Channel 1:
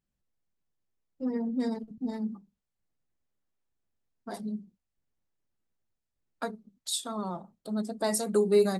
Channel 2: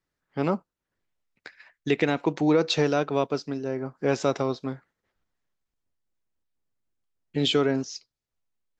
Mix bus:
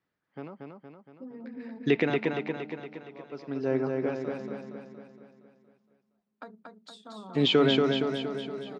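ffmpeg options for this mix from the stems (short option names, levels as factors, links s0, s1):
-filter_complex "[0:a]acompressor=threshold=0.0141:ratio=10,volume=0.668,asplit=2[s0][s1];[s1]volume=0.668[s2];[1:a]alimiter=limit=0.188:level=0:latency=1:release=17,aeval=exprs='val(0)*pow(10,-38*(0.5-0.5*cos(2*PI*0.53*n/s))/20)':c=same,volume=1.41,asplit=2[s3][s4];[s4]volume=0.668[s5];[s2][s5]amix=inputs=2:normalize=0,aecho=0:1:233|466|699|932|1165|1398|1631|1864:1|0.56|0.314|0.176|0.0983|0.0551|0.0308|0.0173[s6];[s0][s3][s6]amix=inputs=3:normalize=0,highpass=120,lowpass=3300"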